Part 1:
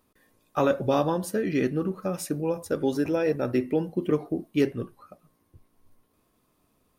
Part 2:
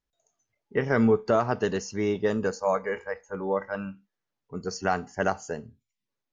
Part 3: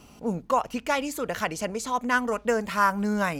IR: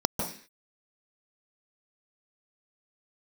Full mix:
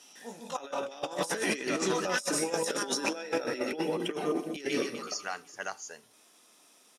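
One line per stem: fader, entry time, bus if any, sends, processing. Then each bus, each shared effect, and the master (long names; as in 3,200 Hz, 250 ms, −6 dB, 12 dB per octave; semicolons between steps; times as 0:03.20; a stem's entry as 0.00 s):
+0.5 dB, 0.00 s, send −15.5 dB, echo send −14.5 dB, high-pass filter 180 Hz 12 dB per octave
−15.0 dB, 0.40 s, no send, no echo send, no processing
−16.5 dB, 0.00 s, send −9.5 dB, no echo send, chorus effect 2.2 Hz, delay 18 ms, depth 3.6 ms; parametric band 3,600 Hz +7 dB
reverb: on, RT60 0.45 s, pre-delay 143 ms
echo: repeating echo 125 ms, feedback 58%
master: meter weighting curve ITU-R 468; compressor whose output falls as the input rises −31 dBFS, ratio −0.5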